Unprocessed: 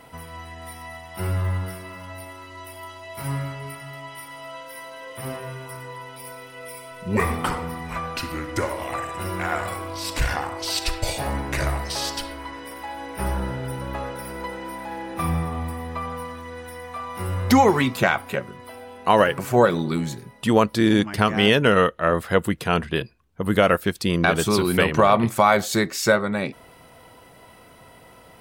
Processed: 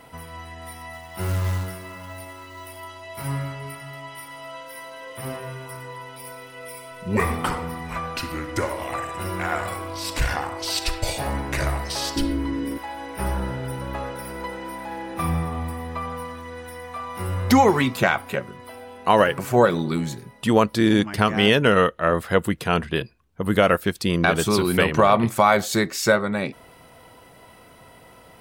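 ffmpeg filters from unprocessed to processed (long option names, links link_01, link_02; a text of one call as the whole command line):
ffmpeg -i in.wav -filter_complex "[0:a]asettb=1/sr,asplit=3[link_01][link_02][link_03];[link_01]atrim=end=0.934[link_04];[link_02]atrim=start=0.93:end=2.81,asetpts=PTS-STARTPTS,afade=type=in:duration=0.004:curve=qsin,afade=type=out:start_time=1.876:duration=0.004:curve=qsin,acrusher=bits=4:mode=log:mix=0:aa=0.000001[link_05];[link_03]atrim=start=2.806[link_06];[link_04][link_05]acrossfade=duration=0.004:curve1=hsin:curve2=qsin[link_07];[link_07][link_06]acrossfade=duration=0.004:curve1=qsin:curve2=hsin,asettb=1/sr,asplit=3[link_08][link_09][link_10];[link_08]atrim=end=12.164[link_11];[link_09]atrim=start=12.16:end=12.78,asetpts=PTS-STARTPTS,afade=type=in:duration=0.004:curve=qsin,afade=type=out:start_time=0.616:duration=0.004:curve=qsin,lowshelf=frequency=470:width_type=q:width=1.5:gain=13[link_12];[link_10]atrim=start=12.776[link_13];[link_11][link_12]acrossfade=duration=0.004:curve1=hsin:curve2=qsin[link_14];[link_14][link_13]acrossfade=duration=0.004:curve1=qsin:curve2=hsin" out.wav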